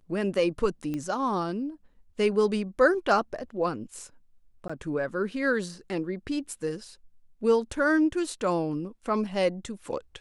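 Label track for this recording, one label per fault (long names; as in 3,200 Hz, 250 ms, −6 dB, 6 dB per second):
0.940000	0.940000	click −21 dBFS
4.680000	4.700000	drop-out 15 ms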